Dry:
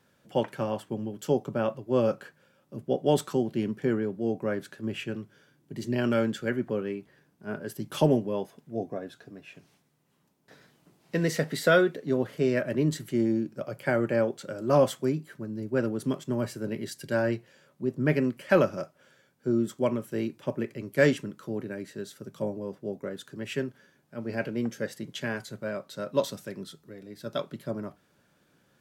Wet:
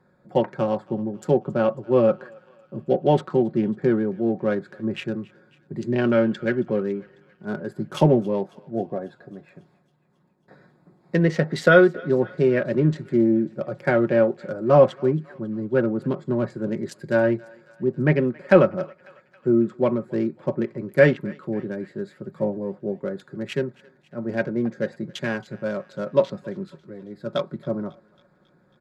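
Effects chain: local Wiener filter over 15 samples; low-pass that closes with the level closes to 2.8 kHz, closed at -22 dBFS; comb 5.5 ms, depth 41%; on a send: thinning echo 273 ms, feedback 69%, high-pass 920 Hz, level -21.5 dB; on the sum: trim +5.5 dB

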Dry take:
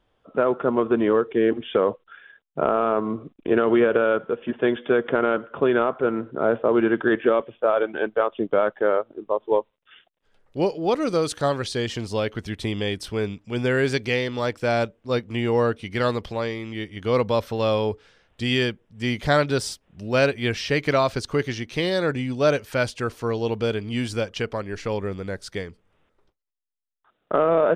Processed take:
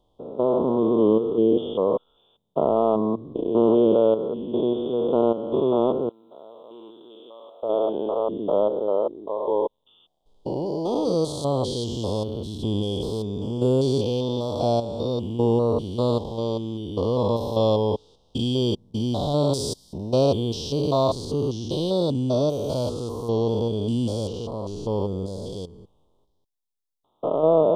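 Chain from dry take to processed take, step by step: spectrogram pixelated in time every 200 ms; Chebyshev band-stop 1–3.4 kHz, order 3; 6.09–7.63 s: differentiator; trim +4 dB

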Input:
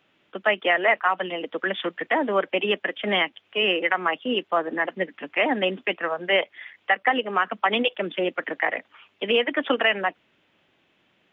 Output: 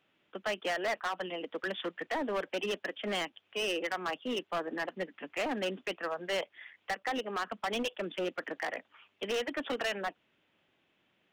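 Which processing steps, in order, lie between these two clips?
dynamic bell 2.1 kHz, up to -5 dB, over -39 dBFS, Q 4.4; overload inside the chain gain 21 dB; trim -8 dB

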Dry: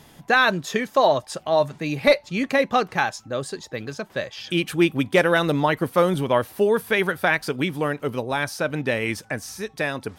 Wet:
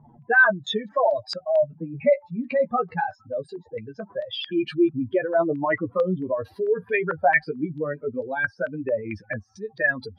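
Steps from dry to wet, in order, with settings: spectral contrast enhancement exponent 2.8; flange 0.2 Hz, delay 8.2 ms, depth 4.9 ms, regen +9%; step-sequenced low-pass 4.5 Hz 950–4500 Hz

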